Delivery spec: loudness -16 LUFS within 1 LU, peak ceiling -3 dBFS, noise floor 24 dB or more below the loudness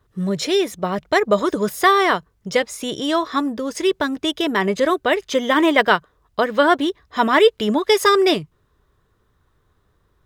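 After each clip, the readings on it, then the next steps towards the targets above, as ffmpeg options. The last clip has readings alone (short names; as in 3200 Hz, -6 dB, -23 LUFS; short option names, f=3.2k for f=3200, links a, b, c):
loudness -18.5 LUFS; peak -1.0 dBFS; loudness target -16.0 LUFS
-> -af "volume=2.5dB,alimiter=limit=-3dB:level=0:latency=1"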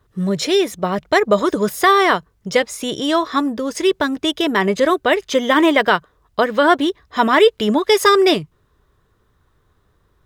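loudness -16.5 LUFS; peak -3.0 dBFS; noise floor -62 dBFS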